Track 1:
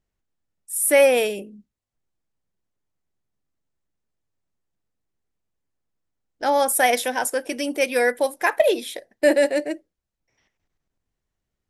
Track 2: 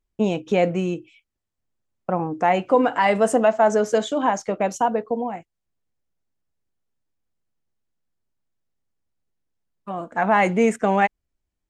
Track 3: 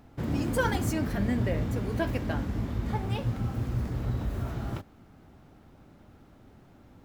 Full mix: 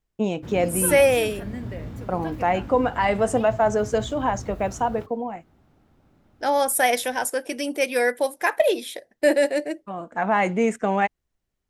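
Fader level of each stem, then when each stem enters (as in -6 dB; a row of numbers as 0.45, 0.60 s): -1.5, -3.0, -5.5 dB; 0.00, 0.00, 0.25 s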